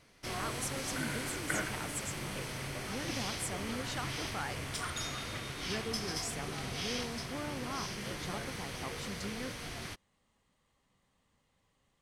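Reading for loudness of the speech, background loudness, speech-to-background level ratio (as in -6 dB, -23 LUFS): -42.5 LUFS, -39.0 LUFS, -3.5 dB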